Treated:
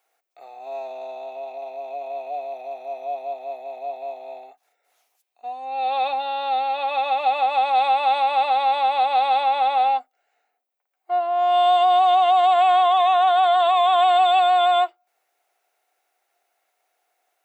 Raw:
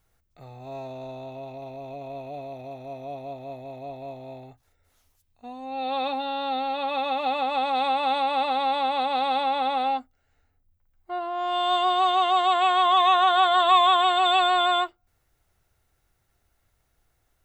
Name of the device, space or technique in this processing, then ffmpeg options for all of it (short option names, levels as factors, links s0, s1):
laptop speaker: -af "highpass=f=410:w=0.5412,highpass=f=410:w=1.3066,equalizer=f=730:t=o:w=0.29:g=11,equalizer=f=2400:t=o:w=0.41:g=5.5,alimiter=limit=0.282:level=0:latency=1:release=62"